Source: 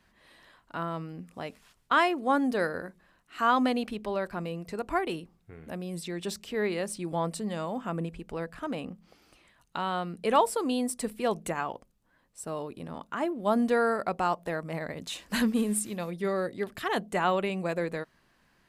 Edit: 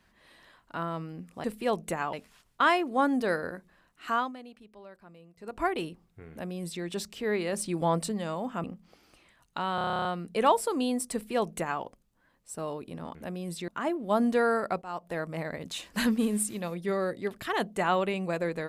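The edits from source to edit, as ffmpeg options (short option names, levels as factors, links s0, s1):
-filter_complex "[0:a]asplit=21[s0][s1][s2][s3][s4][s5][s6][s7][s8][s9][s10][s11][s12][s13][s14][s15][s16][s17][s18][s19][s20];[s0]atrim=end=1.442[s21];[s1]atrim=start=11.018:end=11.712[s22];[s2]atrim=start=1.438:end=3.63,asetpts=PTS-STARTPTS,afade=t=out:st=1.942:d=0.25:silence=0.125893[s23];[s3]atrim=start=3.63:end=4.69,asetpts=PTS-STARTPTS,volume=0.126[s24];[s4]atrim=start=4.69:end=6.842,asetpts=PTS-STARTPTS,afade=t=in:d=0.25:silence=0.125893[s25];[s5]atrim=start=6.838:end=7.432,asetpts=PTS-STARTPTS,volume=1.5[s26];[s6]atrim=start=7.428:end=7.952[s27];[s7]atrim=start=8.828:end=9.972[s28];[s8]atrim=start=9.938:end=9.972[s29];[s9]atrim=start=9.938:end=9.972[s30];[s10]atrim=start=9.938:end=9.972[s31];[s11]atrim=start=9.938:end=9.972[s32];[s12]atrim=start=9.938:end=9.972[s33];[s13]atrim=start=9.938:end=9.972[s34];[s14]atrim=start=9.938:end=9.972[s35];[s15]atrim=start=9.938:end=9.972[s36];[s16]atrim=start=9.938:end=9.972[s37];[s17]atrim=start=9.938:end=13.042[s38];[s18]atrim=start=5.608:end=6.142[s39];[s19]atrim=start=13.038:end=14.18,asetpts=PTS-STARTPTS,afade=t=out:st=1.138:d=0.004:c=hsin:silence=0.105925[s40];[s20]atrim=start=14.18,asetpts=PTS-STARTPTS,afade=t=in:d=0.39:silence=0.105925[s41];[s21][s22]acrossfade=d=0.004:c1=hsin:c2=hsin[s42];[s23][s24][s25]concat=n=3:v=0:a=1[s43];[s42][s43]acrossfade=d=0.004:c1=hsin:c2=hsin[s44];[s44][s26]acrossfade=d=0.004:c1=hsin:c2=hsin[s45];[s45][s27]acrossfade=d=0.004:c1=hsin:c2=hsin[s46];[s46][s28]acrossfade=d=0.004:c1=hsin:c2=hsin[s47];[s47][s29]acrossfade=d=0.004:c1=hsin:c2=hsin[s48];[s48][s30]acrossfade=d=0.004:c1=hsin:c2=hsin[s49];[s49][s31]acrossfade=d=0.004:c1=hsin:c2=hsin[s50];[s50][s32]acrossfade=d=0.004:c1=hsin:c2=hsin[s51];[s51][s33]acrossfade=d=0.004:c1=hsin:c2=hsin[s52];[s52][s34]acrossfade=d=0.004:c1=hsin:c2=hsin[s53];[s53][s35]acrossfade=d=0.004:c1=hsin:c2=hsin[s54];[s54][s36]acrossfade=d=0.004:c1=hsin:c2=hsin[s55];[s55][s37]acrossfade=d=0.004:c1=hsin:c2=hsin[s56];[s56][s38]acrossfade=d=0.004:c1=hsin:c2=hsin[s57];[s57][s39]acrossfade=d=0.004:c1=hsin:c2=hsin[s58];[s40][s41]concat=n=2:v=0:a=1[s59];[s58][s59]acrossfade=d=0.004:c1=hsin:c2=hsin"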